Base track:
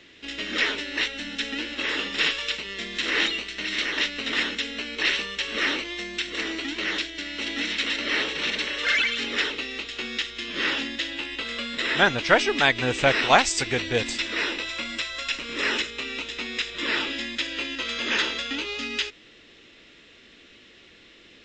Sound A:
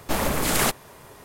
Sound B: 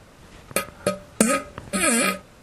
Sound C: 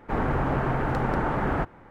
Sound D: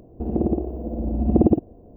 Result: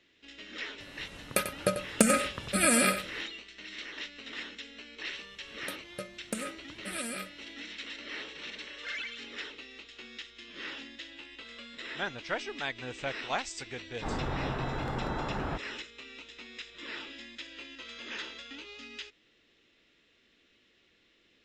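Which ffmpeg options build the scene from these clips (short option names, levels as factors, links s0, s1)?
-filter_complex "[2:a]asplit=2[s0][s1];[0:a]volume=0.168[s2];[s0]aecho=1:1:93:0.299,atrim=end=2.42,asetpts=PTS-STARTPTS,volume=0.596,afade=t=in:d=0.004:c=hsin,afade=t=out:st=2.416:d=0.004:c=hsin,adelay=800[s3];[s1]atrim=end=2.42,asetpts=PTS-STARTPTS,volume=0.133,afade=t=in:d=0.004:c=hsin,afade=t=out:st=2.416:d=0.004:c=hsin,adelay=5120[s4];[3:a]atrim=end=1.9,asetpts=PTS-STARTPTS,volume=0.376,afade=t=in:d=0.004:c=hsin,afade=t=out:st=1.896:d=0.004:c=hsin,adelay=13930[s5];[s2][s3][s4][s5]amix=inputs=4:normalize=0"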